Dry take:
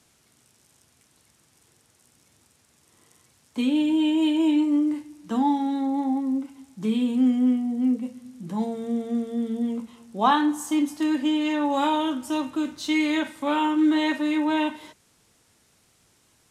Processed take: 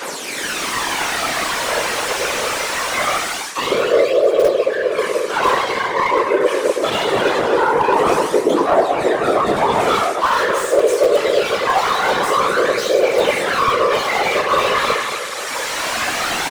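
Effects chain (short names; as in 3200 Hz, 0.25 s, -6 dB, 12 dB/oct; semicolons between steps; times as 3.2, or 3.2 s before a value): overdrive pedal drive 37 dB, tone 4100 Hz, clips at -7.5 dBFS; phaser 0.23 Hz, delay 3.3 ms, feedback 68%; feedback echo 0.242 s, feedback 38%, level -12 dB; reverse; compressor 12:1, threshold -17 dBFS, peak gain reduction 13.5 dB; reverse; reverb RT60 0.75 s, pre-delay 4 ms, DRR -6 dB; frequency shift +200 Hz; in parallel at -11 dB: wrapped overs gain 1.5 dB; on the sum: whisperiser; AGC gain up to 11.5 dB; slew limiter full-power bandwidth 420 Hz; gain -2 dB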